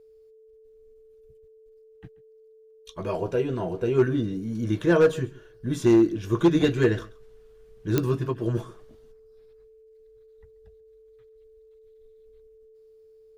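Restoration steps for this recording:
clipped peaks rebuilt −12 dBFS
click removal
notch filter 440 Hz, Q 30
echo removal 135 ms −21 dB

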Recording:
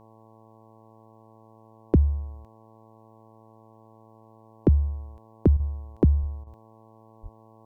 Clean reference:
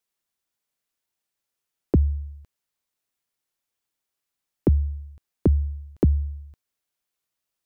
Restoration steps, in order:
hum removal 110.8 Hz, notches 10
0:06.20–0:06.32: high-pass filter 140 Hz 24 dB per octave
0:07.22–0:07.34: high-pass filter 140 Hz 24 dB per octave
repair the gap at 0:05.57/0:06.44, 27 ms

